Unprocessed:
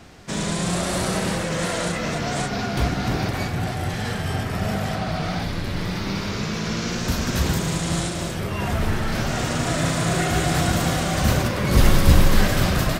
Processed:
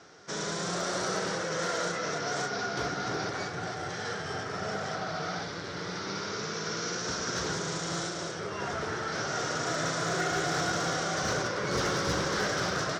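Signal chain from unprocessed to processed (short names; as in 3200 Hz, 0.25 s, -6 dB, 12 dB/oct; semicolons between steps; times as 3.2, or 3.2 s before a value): speaker cabinet 190–6900 Hz, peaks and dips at 230 Hz -10 dB, 440 Hz +6 dB, 1400 Hz +8 dB, 2600 Hz -6 dB, 5700 Hz +9 dB; hard clip -15 dBFS, distortion -25 dB; gain -7.5 dB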